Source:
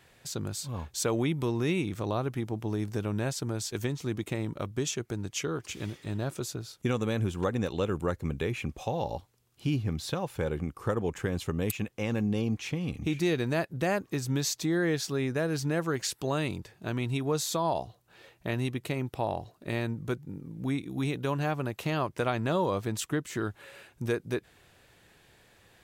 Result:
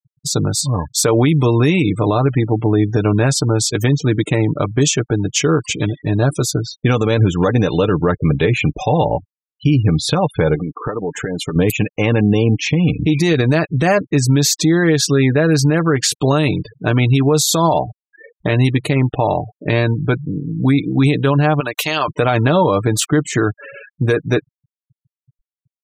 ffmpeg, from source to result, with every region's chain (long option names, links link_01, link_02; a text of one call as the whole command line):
ffmpeg -i in.wav -filter_complex "[0:a]asettb=1/sr,asplit=3[link_01][link_02][link_03];[link_01]atrim=end=10.554[link_04];[link_02]atrim=start=10.55:end=11.56,asetpts=PTS-STARTPTS,afade=type=in:duration=0.004:curve=qsin,afade=type=out:start_time=1.006:duration=0.004:curve=qsin,equalizer=frequency=92:width=1.1:gain=-10.5,acompressor=threshold=-35dB:ratio=8:attack=3.2:release=140:knee=1:detection=peak[link_05];[link_03]atrim=start=11.556[link_06];[link_04][link_05]acrossfade=duration=0.004:curve1=hsin:curve2=qsin[link_07];[link_07][link_06]acrossfade=duration=0.004:curve1=qsin:curve2=hsin,asettb=1/sr,asplit=3[link_08][link_09][link_10];[link_08]atrim=end=21.604[link_11];[link_09]atrim=start=21.6:end=22.08,asetpts=PTS-STARTPTS,afade=type=in:duration=0.004:curve=qsin,afade=type=out:start_time=0.476:duration=0.004:curve=qsin,highpass=frequency=970:poles=1,highshelf=frequency=2500:gain=7[link_12];[link_10]atrim=start=22.076[link_13];[link_11][link_12]acrossfade=duration=0.004:curve1=hsin:curve2=qsin[link_14];[link_14][link_13]acrossfade=duration=0.004:curve1=qsin:curve2=hsin,aecho=1:1:6.7:0.46,afftfilt=real='re*gte(hypot(re,im),0.00891)':imag='im*gte(hypot(re,im),0.00891)':win_size=1024:overlap=0.75,alimiter=level_in=21.5dB:limit=-1dB:release=50:level=0:latency=1,volume=-4.5dB" out.wav